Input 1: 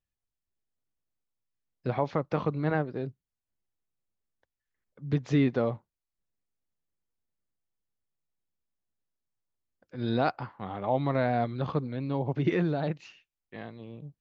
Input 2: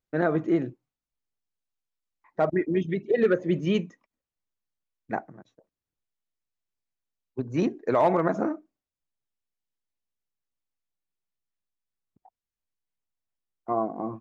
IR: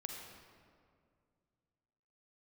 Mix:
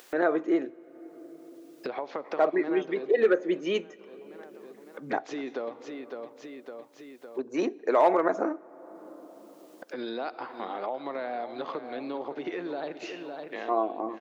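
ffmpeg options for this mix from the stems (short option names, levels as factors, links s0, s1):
-filter_complex "[0:a]acompressor=threshold=0.0316:ratio=6,volume=0.841,asplit=3[s0][s1][s2];[s1]volume=0.355[s3];[s2]volume=0.299[s4];[1:a]volume=1,asplit=2[s5][s6];[s6]volume=0.106[s7];[2:a]atrim=start_sample=2205[s8];[s3][s7]amix=inputs=2:normalize=0[s9];[s9][s8]afir=irnorm=-1:irlink=0[s10];[s4]aecho=0:1:558|1116|1674|2232|2790:1|0.35|0.122|0.0429|0.015[s11];[s0][s5][s10][s11]amix=inputs=4:normalize=0,highpass=f=310:w=0.5412,highpass=f=310:w=1.3066,acompressor=mode=upward:threshold=0.0398:ratio=2.5"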